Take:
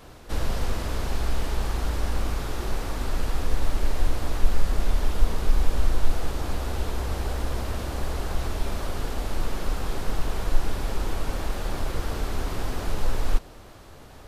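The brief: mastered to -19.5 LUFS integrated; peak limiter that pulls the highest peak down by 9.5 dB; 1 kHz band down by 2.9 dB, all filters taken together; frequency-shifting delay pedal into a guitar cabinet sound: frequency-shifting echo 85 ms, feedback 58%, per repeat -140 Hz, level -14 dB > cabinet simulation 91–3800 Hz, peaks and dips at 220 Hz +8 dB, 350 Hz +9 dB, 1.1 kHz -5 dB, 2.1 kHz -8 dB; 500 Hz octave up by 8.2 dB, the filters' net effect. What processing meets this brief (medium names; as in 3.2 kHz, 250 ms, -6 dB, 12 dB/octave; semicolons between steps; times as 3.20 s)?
peaking EQ 500 Hz +8 dB; peaking EQ 1 kHz -5.5 dB; peak limiter -14 dBFS; frequency-shifting echo 85 ms, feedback 58%, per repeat -140 Hz, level -14 dB; cabinet simulation 91–3800 Hz, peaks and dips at 220 Hz +8 dB, 350 Hz +9 dB, 1.1 kHz -5 dB, 2.1 kHz -8 dB; trim +9 dB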